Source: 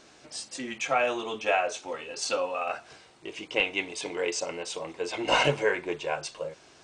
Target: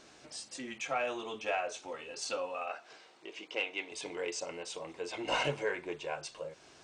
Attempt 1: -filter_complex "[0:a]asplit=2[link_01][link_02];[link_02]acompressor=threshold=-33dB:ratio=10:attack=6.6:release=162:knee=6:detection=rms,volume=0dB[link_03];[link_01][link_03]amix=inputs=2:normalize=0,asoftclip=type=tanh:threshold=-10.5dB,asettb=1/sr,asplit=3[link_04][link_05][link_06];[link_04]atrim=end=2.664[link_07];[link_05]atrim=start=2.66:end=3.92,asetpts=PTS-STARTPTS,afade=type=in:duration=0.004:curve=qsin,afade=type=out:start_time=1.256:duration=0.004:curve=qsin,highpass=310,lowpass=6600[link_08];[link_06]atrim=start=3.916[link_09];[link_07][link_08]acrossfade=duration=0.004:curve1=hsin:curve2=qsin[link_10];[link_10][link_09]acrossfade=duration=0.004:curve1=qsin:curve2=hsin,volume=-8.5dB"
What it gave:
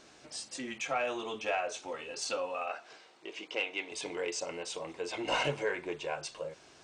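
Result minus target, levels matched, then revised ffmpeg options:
downward compressor: peak gain reduction −10 dB
-filter_complex "[0:a]asplit=2[link_01][link_02];[link_02]acompressor=threshold=-44dB:ratio=10:attack=6.6:release=162:knee=6:detection=rms,volume=0dB[link_03];[link_01][link_03]amix=inputs=2:normalize=0,asoftclip=type=tanh:threshold=-10.5dB,asettb=1/sr,asplit=3[link_04][link_05][link_06];[link_04]atrim=end=2.664[link_07];[link_05]atrim=start=2.66:end=3.92,asetpts=PTS-STARTPTS,afade=type=in:duration=0.004:curve=qsin,afade=type=out:start_time=1.256:duration=0.004:curve=qsin,highpass=310,lowpass=6600[link_08];[link_06]atrim=start=3.916[link_09];[link_07][link_08]acrossfade=duration=0.004:curve1=hsin:curve2=qsin[link_10];[link_10][link_09]acrossfade=duration=0.004:curve1=qsin:curve2=hsin,volume=-8.5dB"

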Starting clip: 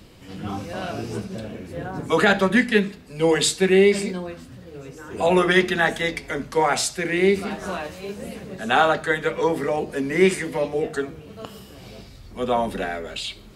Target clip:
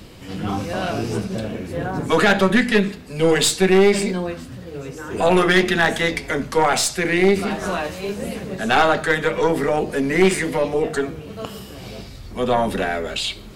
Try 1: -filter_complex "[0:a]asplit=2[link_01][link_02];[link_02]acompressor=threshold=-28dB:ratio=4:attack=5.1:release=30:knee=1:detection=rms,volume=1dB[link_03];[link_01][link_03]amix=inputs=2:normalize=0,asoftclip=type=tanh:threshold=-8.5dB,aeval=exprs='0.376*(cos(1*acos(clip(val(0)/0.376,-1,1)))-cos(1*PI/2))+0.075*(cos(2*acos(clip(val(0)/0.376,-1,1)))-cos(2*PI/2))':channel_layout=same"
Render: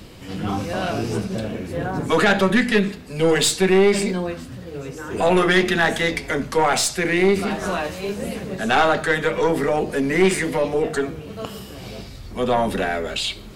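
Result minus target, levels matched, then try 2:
soft clipping: distortion +12 dB
-filter_complex "[0:a]asplit=2[link_01][link_02];[link_02]acompressor=threshold=-28dB:ratio=4:attack=5.1:release=30:knee=1:detection=rms,volume=1dB[link_03];[link_01][link_03]amix=inputs=2:normalize=0,asoftclip=type=tanh:threshold=-1dB,aeval=exprs='0.376*(cos(1*acos(clip(val(0)/0.376,-1,1)))-cos(1*PI/2))+0.075*(cos(2*acos(clip(val(0)/0.376,-1,1)))-cos(2*PI/2))':channel_layout=same"

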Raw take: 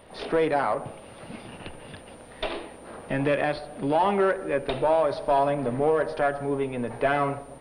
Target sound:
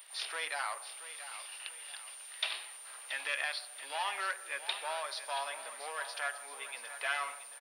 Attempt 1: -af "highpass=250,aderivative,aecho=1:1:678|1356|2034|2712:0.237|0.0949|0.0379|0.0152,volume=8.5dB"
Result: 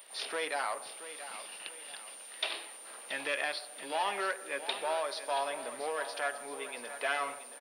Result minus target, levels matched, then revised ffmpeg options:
250 Hz band +16.5 dB
-af "highpass=970,aderivative,aecho=1:1:678|1356|2034|2712:0.237|0.0949|0.0379|0.0152,volume=8.5dB"

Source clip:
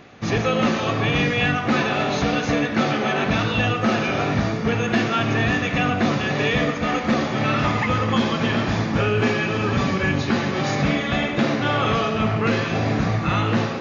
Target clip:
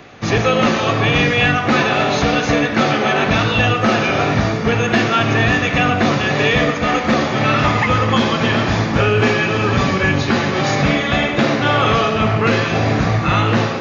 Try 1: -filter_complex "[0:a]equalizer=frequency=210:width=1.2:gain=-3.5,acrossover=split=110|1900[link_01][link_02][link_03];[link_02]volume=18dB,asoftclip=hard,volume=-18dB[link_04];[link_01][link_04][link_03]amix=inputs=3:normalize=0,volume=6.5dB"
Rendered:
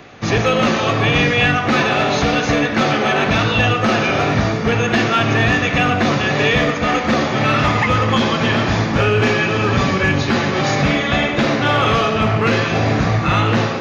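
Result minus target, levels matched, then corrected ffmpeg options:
gain into a clipping stage and back: distortion +33 dB
-filter_complex "[0:a]equalizer=frequency=210:width=1.2:gain=-3.5,acrossover=split=110|1900[link_01][link_02][link_03];[link_02]volume=11.5dB,asoftclip=hard,volume=-11.5dB[link_04];[link_01][link_04][link_03]amix=inputs=3:normalize=0,volume=6.5dB"

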